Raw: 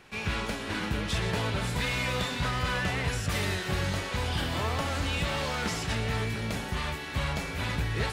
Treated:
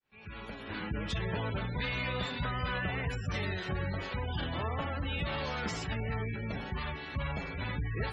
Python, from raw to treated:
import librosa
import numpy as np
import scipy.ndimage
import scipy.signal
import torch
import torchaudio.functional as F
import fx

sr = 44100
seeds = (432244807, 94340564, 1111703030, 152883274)

y = fx.fade_in_head(x, sr, length_s=0.98)
y = fx.spec_gate(y, sr, threshold_db=-20, keep='strong')
y = F.gain(torch.from_numpy(y), -4.0).numpy()